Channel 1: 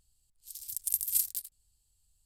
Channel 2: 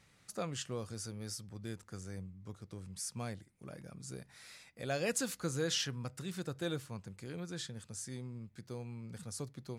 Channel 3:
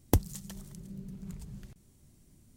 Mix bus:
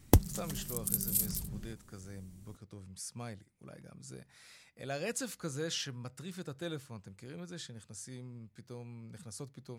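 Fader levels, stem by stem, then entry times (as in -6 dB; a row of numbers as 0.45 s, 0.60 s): -3.0 dB, -2.5 dB, +2.0 dB; 0.00 s, 0.00 s, 0.00 s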